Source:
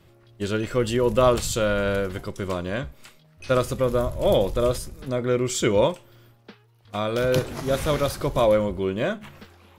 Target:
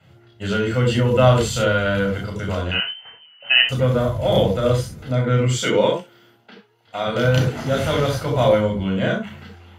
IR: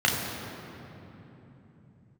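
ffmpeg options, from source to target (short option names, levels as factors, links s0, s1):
-filter_complex "[0:a]asettb=1/sr,asplit=3[s0][s1][s2];[s0]atrim=end=2.714[s3];[s1]atrim=start=2.71:end=3.69,asetpts=PTS-STARTPTS,afade=t=in:d=0.004:c=qsin,afade=t=out:st=0.976:d=0.004:c=qsin,lowpass=f=2600:t=q:w=0.5098,lowpass=f=2600:t=q:w=0.6013,lowpass=f=2600:t=q:w=0.9,lowpass=f=2600:t=q:w=2.563,afreqshift=-3100[s4];[s2]atrim=start=3.686[s5];[s3][s4]acrossfade=d=0.004:c1=hsin:c2=qsin[s6];[s6][s5]acrossfade=d=0.004:c1=qsin:c2=hsin,asettb=1/sr,asplit=3[s7][s8][s9];[s7]atrim=end=5.604[s10];[s8]atrim=start=5.6:end=7.07,asetpts=PTS-STARTPTS,afade=t=in:d=0.004:c=qsin,afade=t=out:st=1.466:d=0.004:c=qsin,highpass=230[s11];[s9]atrim=start=7.066[s12];[s10][s11]acrossfade=d=0.004:c1=hsin:c2=qsin[s13];[s13][s12]acrossfade=d=0.004:c1=qsin:c2=hsin[s14];[1:a]atrim=start_sample=2205,atrim=end_sample=4410[s15];[s14][s15]afir=irnorm=-1:irlink=0,volume=0.335"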